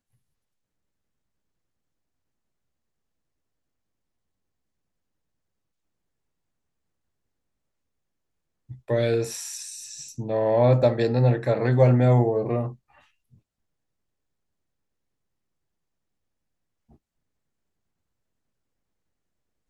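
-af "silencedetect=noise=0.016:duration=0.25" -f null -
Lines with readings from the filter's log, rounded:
silence_start: 0.00
silence_end: 8.70 | silence_duration: 8.70
silence_start: 12.73
silence_end: 19.70 | silence_duration: 6.97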